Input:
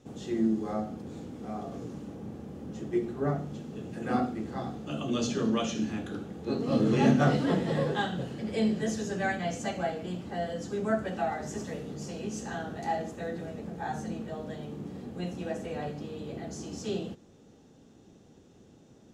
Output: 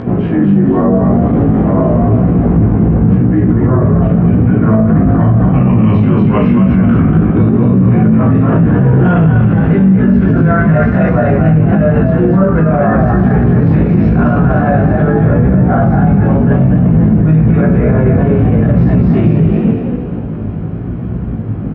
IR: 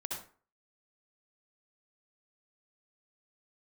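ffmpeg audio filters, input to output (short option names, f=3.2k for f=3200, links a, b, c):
-filter_complex "[0:a]highpass=51,asplit=2[a][b];[b]adelay=32,volume=-7dB[c];[a][c]amix=inputs=2:normalize=0,asplit=2[d][e];[e]asetrate=33038,aresample=44100,atempo=1.33484,volume=-11dB[f];[d][f]amix=inputs=2:normalize=0,lowpass=f=2.1k:w=0.5412,lowpass=f=2.1k:w=1.3066,areverse,acompressor=threshold=-35dB:ratio=6,areverse,asplit=6[g][h][i][j][k][l];[h]adelay=209,afreqshift=51,volume=-4.5dB[m];[i]adelay=418,afreqshift=102,volume=-11.6dB[n];[j]adelay=627,afreqshift=153,volume=-18.8dB[o];[k]adelay=836,afreqshift=204,volume=-25.9dB[p];[l]adelay=1045,afreqshift=255,volume=-33dB[q];[g][m][n][o][p][q]amix=inputs=6:normalize=0,asetrate=38808,aresample=44100,asubboost=boost=4.5:cutoff=170,acompressor=mode=upward:threshold=-47dB:ratio=2.5,flanger=delay=16.5:depth=2.6:speed=0.9,alimiter=level_in=33.5dB:limit=-1dB:release=50:level=0:latency=1,volume=-1dB"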